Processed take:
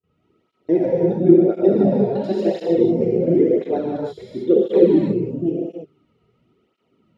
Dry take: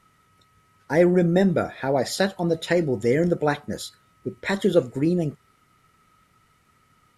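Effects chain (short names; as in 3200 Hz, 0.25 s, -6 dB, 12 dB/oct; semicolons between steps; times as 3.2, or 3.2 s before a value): slices in reverse order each 86 ms, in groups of 4; notches 50/100/150 Hz; gate with hold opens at -53 dBFS; EQ curve 140 Hz 0 dB, 370 Hz +10 dB, 1800 Hz -16 dB, 2800 Hz -3 dB, 9800 Hz -26 dB; non-linear reverb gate 0.36 s flat, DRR -5.5 dB; tape flanging out of phase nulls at 0.96 Hz, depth 3.7 ms; gain -4 dB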